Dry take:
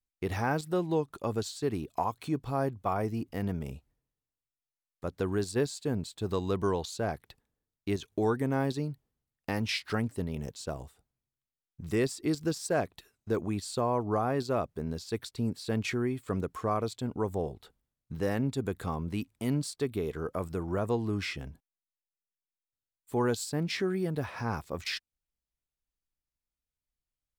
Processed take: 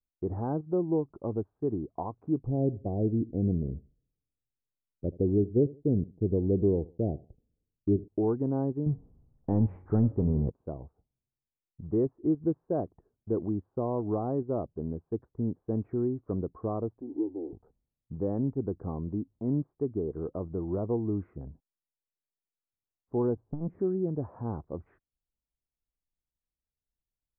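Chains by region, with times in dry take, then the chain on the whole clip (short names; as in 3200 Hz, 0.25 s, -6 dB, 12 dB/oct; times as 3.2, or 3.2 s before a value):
2.46–8.08 inverse Chebyshev low-pass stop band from 1600 Hz, stop band 50 dB + low shelf 410 Hz +6.5 dB + feedback echo 78 ms, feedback 27%, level -20.5 dB
8.86–10.5 power-law curve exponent 0.7 + low shelf 200 Hz +8.5 dB + de-hum 91.94 Hz, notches 31
17.01–17.53 zero-crossing step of -35.5 dBFS + vocal tract filter u + resonant low shelf 240 Hz -8.5 dB, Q 3
23.36–23.79 tilt shelf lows +9 dB, about 680 Hz + overloaded stage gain 27 dB + core saturation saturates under 40 Hz
whole clip: Bessel low-pass 610 Hz, order 6; dynamic EQ 330 Hz, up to +5 dB, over -47 dBFS, Q 3.1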